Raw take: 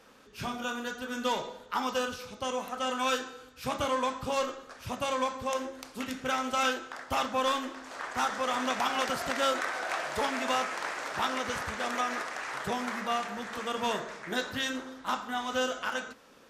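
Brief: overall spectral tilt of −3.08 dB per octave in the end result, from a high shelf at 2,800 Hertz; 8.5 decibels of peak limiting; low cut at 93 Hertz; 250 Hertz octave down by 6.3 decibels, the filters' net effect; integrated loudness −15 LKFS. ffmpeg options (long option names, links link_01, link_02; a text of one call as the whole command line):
ffmpeg -i in.wav -af "highpass=93,equalizer=frequency=250:width_type=o:gain=-6.5,highshelf=frequency=2800:gain=-7.5,volume=22dB,alimiter=limit=-4dB:level=0:latency=1" out.wav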